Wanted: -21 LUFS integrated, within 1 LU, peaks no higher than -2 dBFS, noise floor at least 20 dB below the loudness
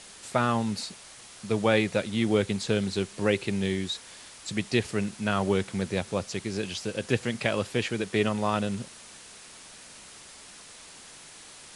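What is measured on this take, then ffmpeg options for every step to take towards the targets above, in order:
noise floor -48 dBFS; noise floor target -49 dBFS; loudness -28.5 LUFS; peak -8.0 dBFS; loudness target -21.0 LUFS
-> -af "afftdn=nr=6:nf=-48"
-af "volume=7.5dB,alimiter=limit=-2dB:level=0:latency=1"

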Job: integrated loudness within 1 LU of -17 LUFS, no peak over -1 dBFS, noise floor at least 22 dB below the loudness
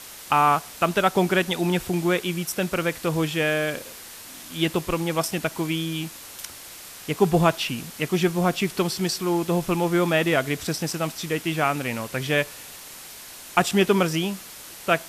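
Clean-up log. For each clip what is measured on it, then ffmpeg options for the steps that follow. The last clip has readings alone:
noise floor -42 dBFS; noise floor target -46 dBFS; loudness -24.0 LUFS; peak -4.5 dBFS; loudness target -17.0 LUFS
-> -af "afftdn=nr=6:nf=-42"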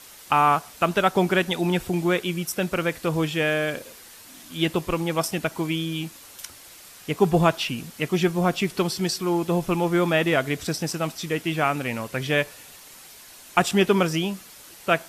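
noise floor -46 dBFS; loudness -24.0 LUFS; peak -4.5 dBFS; loudness target -17.0 LUFS
-> -af "volume=7dB,alimiter=limit=-1dB:level=0:latency=1"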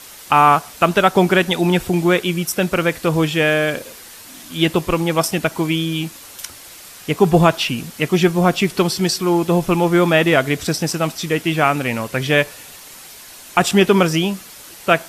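loudness -17.0 LUFS; peak -1.0 dBFS; noise floor -39 dBFS

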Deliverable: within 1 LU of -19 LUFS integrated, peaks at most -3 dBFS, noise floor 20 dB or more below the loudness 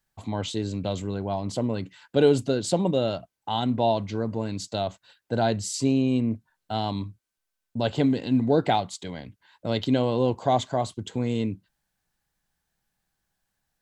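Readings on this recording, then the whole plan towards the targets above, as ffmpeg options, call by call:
loudness -26.5 LUFS; peak -7.5 dBFS; loudness target -19.0 LUFS
-> -af "volume=7.5dB,alimiter=limit=-3dB:level=0:latency=1"

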